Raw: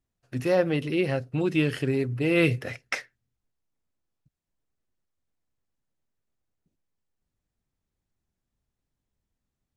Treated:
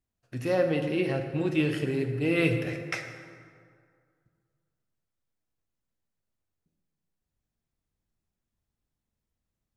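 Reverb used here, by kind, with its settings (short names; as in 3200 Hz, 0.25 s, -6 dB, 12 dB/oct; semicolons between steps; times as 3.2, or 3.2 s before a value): plate-style reverb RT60 2.1 s, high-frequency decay 0.55×, DRR 4.5 dB; gain -3.5 dB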